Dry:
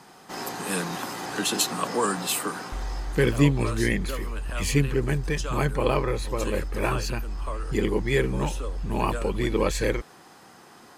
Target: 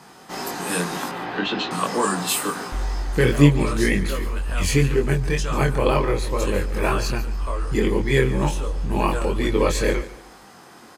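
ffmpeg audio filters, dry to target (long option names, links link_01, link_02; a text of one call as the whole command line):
ffmpeg -i in.wav -filter_complex "[0:a]asettb=1/sr,asplit=3[link_01][link_02][link_03];[link_01]atrim=end=1.094[link_04];[link_02]atrim=start=1.09:end=1.71,asetpts=PTS-STARTPTS,afade=type=in:duration=0.004:curve=qsin,afade=type=out:start_time=0.616:duration=0.004:curve=qsin,lowpass=frequency=3500:width=0.5412,lowpass=frequency=3500:width=1.3066[link_05];[link_03]atrim=start=1.706[link_06];[link_04][link_05]acrossfade=duration=0.004:curve1=hsin:curve2=qsin[link_07];[link_07][link_06]acrossfade=duration=0.004:curve1=qsin:curve2=hsin,flanger=delay=20:depth=3.4:speed=2,asplit=2[link_08][link_09];[link_09]aecho=0:1:144|288|432:0.158|0.0475|0.0143[link_10];[link_08][link_10]amix=inputs=2:normalize=0,volume=7dB" out.wav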